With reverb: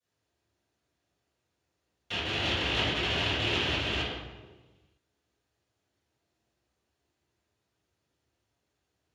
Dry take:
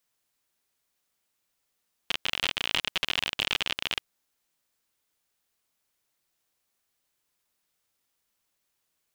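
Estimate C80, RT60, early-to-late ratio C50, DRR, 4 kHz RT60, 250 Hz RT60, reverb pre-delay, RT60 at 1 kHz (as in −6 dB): 1.0 dB, 1.3 s, −4.0 dB, −21.0 dB, 0.90 s, 1.5 s, 3 ms, 1.2 s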